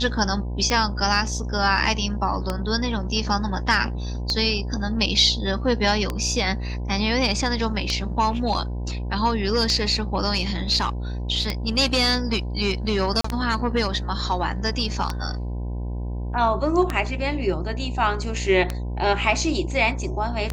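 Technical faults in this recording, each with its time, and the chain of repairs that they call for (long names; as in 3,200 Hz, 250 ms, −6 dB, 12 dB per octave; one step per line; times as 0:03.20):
mains buzz 60 Hz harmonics 17 −28 dBFS
scratch tick 33 1/3 rpm −9 dBFS
0:13.21–0:13.24: drop-out 34 ms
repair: click removal
hum removal 60 Hz, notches 17
repair the gap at 0:13.21, 34 ms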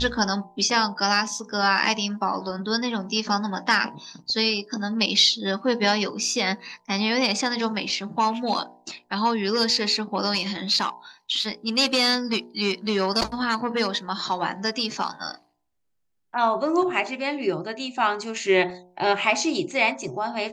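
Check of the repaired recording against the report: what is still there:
none of them is left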